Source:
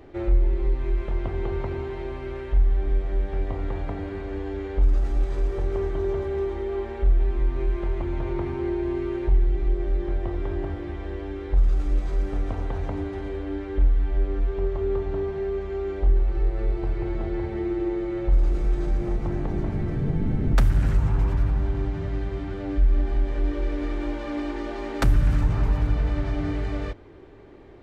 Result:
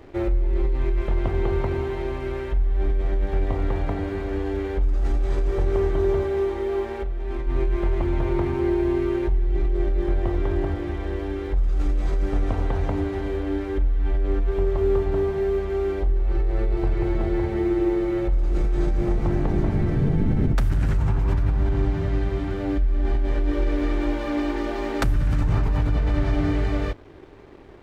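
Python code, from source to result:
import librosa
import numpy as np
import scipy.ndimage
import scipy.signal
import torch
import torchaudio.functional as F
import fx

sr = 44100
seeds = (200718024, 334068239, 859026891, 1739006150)

p1 = fx.over_compress(x, sr, threshold_db=-23.0, ratio=-0.5)
p2 = x + (p1 * librosa.db_to_amplitude(2.0))
p3 = fx.low_shelf(p2, sr, hz=150.0, db=-7.5, at=(6.26, 7.47))
p4 = np.sign(p3) * np.maximum(np.abs(p3) - 10.0 ** (-45.5 / 20.0), 0.0)
y = p4 * librosa.db_to_amplitude(-3.5)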